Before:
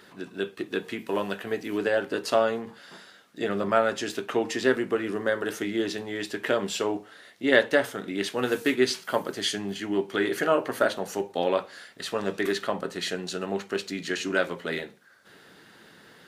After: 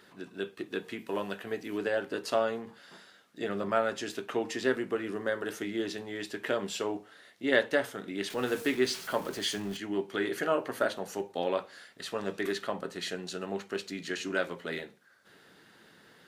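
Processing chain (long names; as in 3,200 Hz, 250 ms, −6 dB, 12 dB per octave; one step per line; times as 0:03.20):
0:08.30–0:09.77: converter with a step at zero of −35.5 dBFS
level −5.5 dB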